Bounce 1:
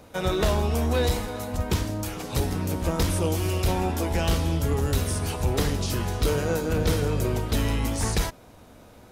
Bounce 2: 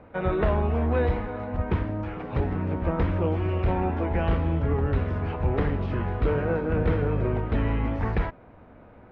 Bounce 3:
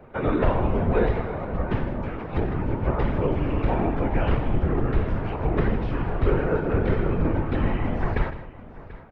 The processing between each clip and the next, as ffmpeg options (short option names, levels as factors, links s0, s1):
-af "lowpass=f=2200:w=0.5412,lowpass=f=2200:w=1.3066"
-af "afftfilt=real='hypot(re,im)*cos(2*PI*random(0))':imag='hypot(re,im)*sin(2*PI*random(1))':win_size=512:overlap=0.75,afreqshift=-48,aecho=1:1:92|157|737:0.15|0.2|0.126,volume=2.51"